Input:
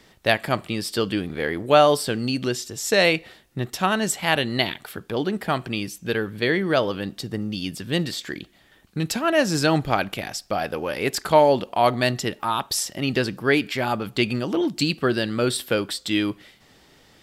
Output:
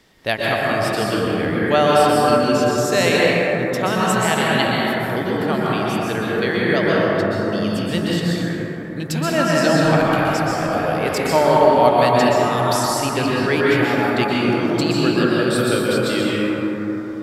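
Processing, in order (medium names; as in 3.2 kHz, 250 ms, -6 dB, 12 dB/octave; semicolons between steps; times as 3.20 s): 6.99–7.51 s: treble shelf 7.2 kHz -9.5 dB; plate-style reverb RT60 4.3 s, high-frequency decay 0.25×, pre-delay 110 ms, DRR -6.5 dB; trim -2 dB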